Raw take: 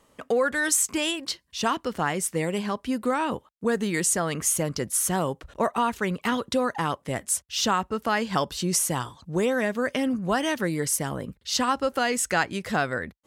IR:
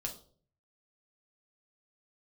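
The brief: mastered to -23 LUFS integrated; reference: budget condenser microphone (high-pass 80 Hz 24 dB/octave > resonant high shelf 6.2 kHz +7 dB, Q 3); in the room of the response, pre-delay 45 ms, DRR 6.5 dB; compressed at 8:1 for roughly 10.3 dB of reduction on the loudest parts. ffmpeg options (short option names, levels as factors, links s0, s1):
-filter_complex "[0:a]acompressor=threshold=0.0316:ratio=8,asplit=2[s0][s1];[1:a]atrim=start_sample=2205,adelay=45[s2];[s1][s2]afir=irnorm=-1:irlink=0,volume=0.501[s3];[s0][s3]amix=inputs=2:normalize=0,highpass=f=80:w=0.5412,highpass=f=80:w=1.3066,highshelf=f=6200:t=q:w=3:g=7,volume=1.68"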